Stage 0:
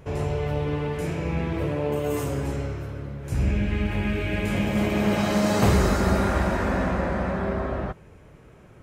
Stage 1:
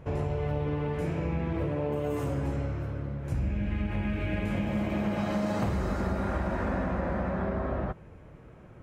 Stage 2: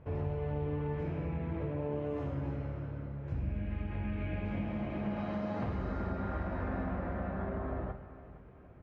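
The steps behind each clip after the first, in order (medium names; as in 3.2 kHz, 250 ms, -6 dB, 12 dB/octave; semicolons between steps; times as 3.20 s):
treble shelf 3 kHz -11.5 dB; band-stop 410 Hz, Q 12; compression, threshold -26 dBFS, peak gain reduction 10.5 dB
distance through air 230 m; feedback delay 461 ms, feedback 40%, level -16 dB; on a send at -7 dB: reverberation RT60 1.1 s, pre-delay 5 ms; on the sum: trim -7 dB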